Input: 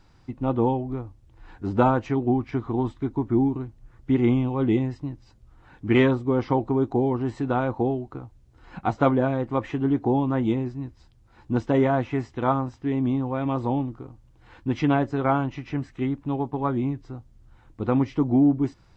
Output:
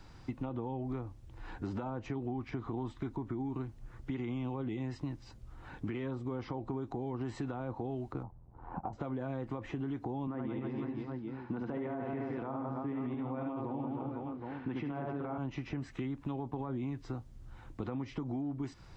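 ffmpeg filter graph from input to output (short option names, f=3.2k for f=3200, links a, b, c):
-filter_complex "[0:a]asettb=1/sr,asplit=3[a][b][c];[a]atrim=end=8.234[d];[b]atrim=start=8.23:end=8.93,asetpts=PTS-STARTPTS,afade=t=in:d=0.004:c=qsin,afade=t=out:st=0.696:d=0.004:c=qsin,lowpass=f=900:t=q:w=3.2,tremolo=f=84:d=0.75[e];[c]atrim=start=8.926[f];[d][e]acrossfade=d=0.004:c1=hsin:c2=qsin[g];[g][f]acrossfade=d=0.004:c1=qsin:c2=hsin,asettb=1/sr,asplit=3[h][i][j];[h]atrim=end=10.274[k];[i]atrim=start=10.27:end=15.38,asetpts=PTS-STARTPTS,afade=t=in:d=0.004:c=qsin,afade=t=out:st=5.106:d=0.004:c=qsin,highpass=160,lowpass=2.2k,aecho=1:1:70|168|305.2|497.3|766.2:0.631|0.398|0.251|0.158|0.1,atrim=end_sample=225351[l];[j]atrim=start=15.376[m];[k][l]acrossfade=d=0.004:c1=hsin:c2=qsin[n];[n][m]acrossfade=d=0.004:c1=qsin:c2=hsin,acompressor=threshold=-26dB:ratio=6,alimiter=level_in=1dB:limit=-24dB:level=0:latency=1:release=51,volume=-1dB,acrossover=split=180|890[o][p][q];[o]acompressor=threshold=-46dB:ratio=4[r];[p]acompressor=threshold=-42dB:ratio=4[s];[q]acompressor=threshold=-53dB:ratio=4[t];[r][s][t]amix=inputs=3:normalize=0,volume=3dB"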